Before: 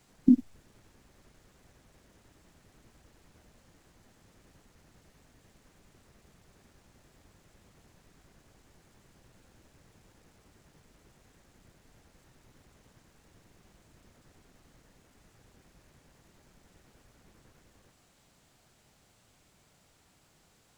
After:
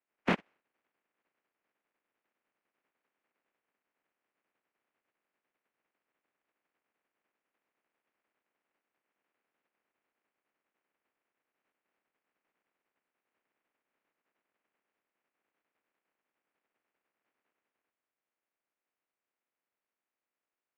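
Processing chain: spectral contrast lowered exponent 0.31; mistuned SSB -69 Hz 310–2700 Hz; power-law curve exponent 1.4

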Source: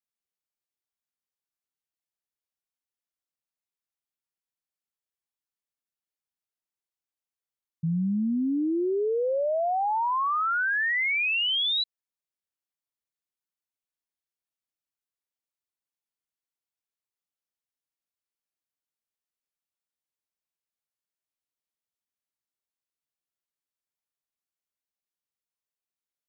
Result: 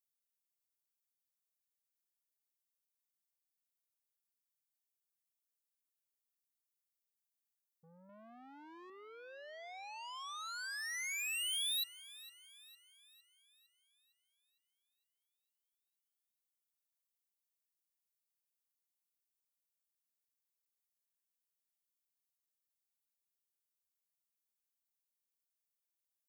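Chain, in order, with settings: soft clip -30 dBFS, distortion -14 dB; differentiator; 8.09–8.9 overdrive pedal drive 16 dB, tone 3100 Hz, clips at -48 dBFS; thinning echo 0.457 s, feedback 51%, high-pass 480 Hz, level -18 dB

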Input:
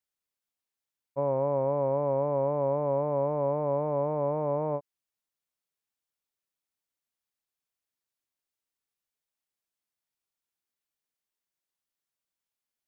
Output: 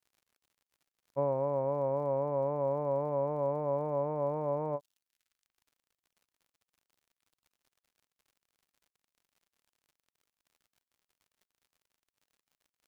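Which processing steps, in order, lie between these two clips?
crackle 85/s -54 dBFS; reverb removal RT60 0.82 s; gain -1.5 dB

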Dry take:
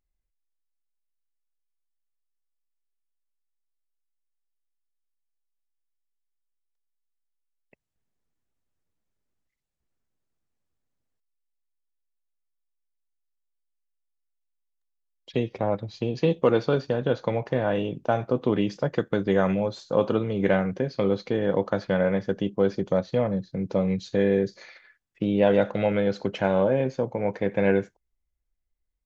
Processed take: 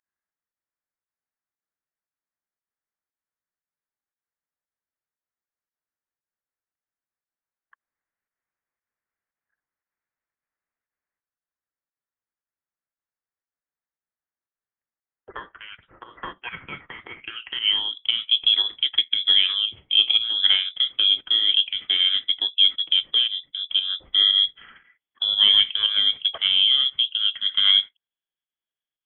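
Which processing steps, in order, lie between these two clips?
high-pass sweep 2000 Hz -> 350 Hz, 17.07–18.05; pump 116 bpm, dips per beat 1, -9 dB, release 0.12 s; inverted band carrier 3700 Hz

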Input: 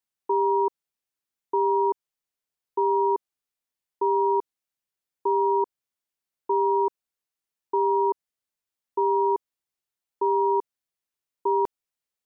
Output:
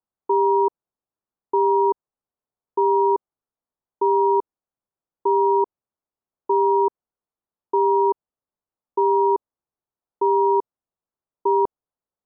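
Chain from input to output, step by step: LPF 1200 Hz 24 dB/oct; gain +4.5 dB

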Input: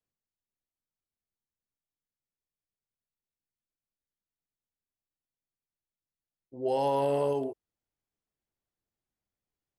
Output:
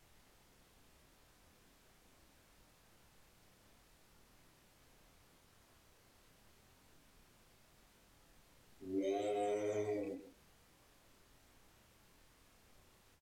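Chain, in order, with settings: bin magnitudes rounded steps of 30 dB; HPF 890 Hz 6 dB/oct; comb 5.5 ms, depth 81%; compressor, threshold -38 dBFS, peak gain reduction 10 dB; added noise pink -69 dBFS; chorus 1 Hz, delay 17.5 ms, depth 6.9 ms; echo 97 ms -13 dB; speed mistake 45 rpm record played at 33 rpm; ending taper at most 150 dB/s; gain +5 dB

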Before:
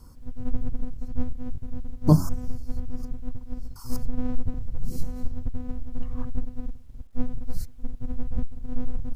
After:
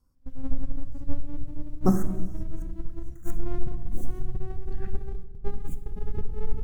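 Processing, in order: speed glide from 102% -> 174%; gate -32 dBFS, range -18 dB; on a send: reverb RT60 1.1 s, pre-delay 4 ms, DRR 8.5 dB; on the sum: gain -4 dB

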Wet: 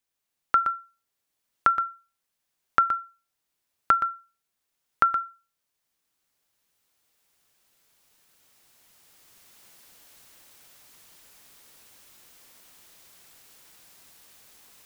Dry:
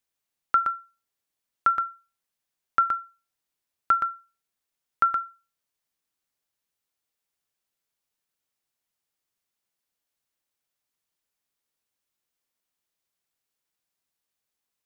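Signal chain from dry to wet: recorder AGC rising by 6.6 dB/s

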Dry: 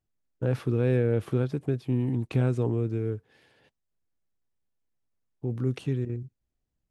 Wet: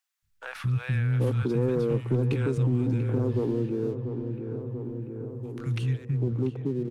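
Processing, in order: three bands offset in time highs, lows, mids 0.22/0.78 s, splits 170/1000 Hz; sample leveller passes 1; dynamic EQ 660 Hz, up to -7 dB, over -46 dBFS, Q 2.8; on a send: darkening echo 0.689 s, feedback 68%, low-pass 1700 Hz, level -11 dB; on the sum: three-band squash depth 40%

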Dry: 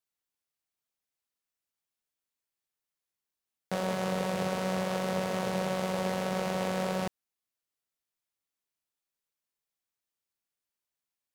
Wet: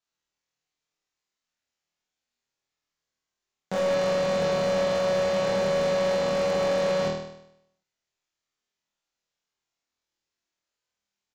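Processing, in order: flutter echo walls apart 4.3 m, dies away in 0.77 s; downsampling 16000 Hz; overloaded stage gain 23 dB; gain +2.5 dB

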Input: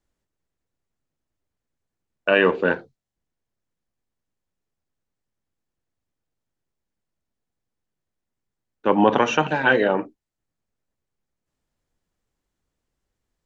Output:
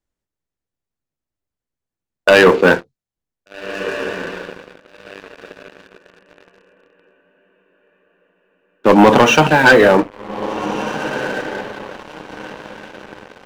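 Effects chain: on a send: diffused feedback echo 1.605 s, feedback 45%, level -15 dB; on the sum: sample leveller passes 3; gain +1.5 dB

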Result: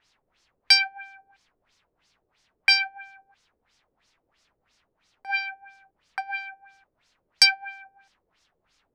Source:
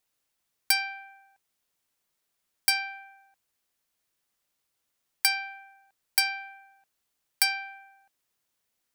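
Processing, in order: added noise pink -72 dBFS; LFO low-pass sine 3 Hz 430–5900 Hz; tilt shelf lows -5.5 dB, about 770 Hz

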